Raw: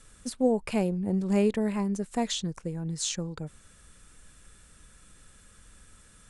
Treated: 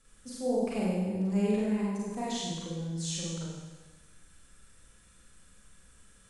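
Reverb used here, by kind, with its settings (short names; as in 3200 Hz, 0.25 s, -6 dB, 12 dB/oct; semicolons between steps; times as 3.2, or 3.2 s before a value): Schroeder reverb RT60 1.3 s, combs from 33 ms, DRR -7 dB; gain -11.5 dB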